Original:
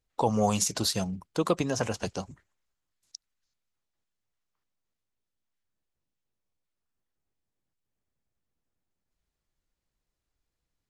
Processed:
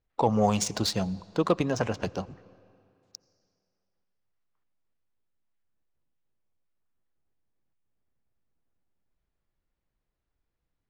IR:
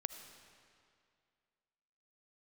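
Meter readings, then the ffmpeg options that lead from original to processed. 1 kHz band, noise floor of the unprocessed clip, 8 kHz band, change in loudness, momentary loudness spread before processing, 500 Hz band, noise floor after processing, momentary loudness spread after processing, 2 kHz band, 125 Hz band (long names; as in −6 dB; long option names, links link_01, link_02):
+1.5 dB, −85 dBFS, −4.0 dB, +1.0 dB, 11 LU, +2.0 dB, −83 dBFS, 10 LU, +1.0 dB, +2.0 dB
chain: -filter_complex "[0:a]adynamicsmooth=sensitivity=3:basefreq=3300,asplit=2[link_01][link_02];[1:a]atrim=start_sample=2205,asetrate=38367,aresample=44100,highshelf=frequency=8900:gain=-9[link_03];[link_02][link_03]afir=irnorm=-1:irlink=0,volume=-11dB[link_04];[link_01][link_04]amix=inputs=2:normalize=0"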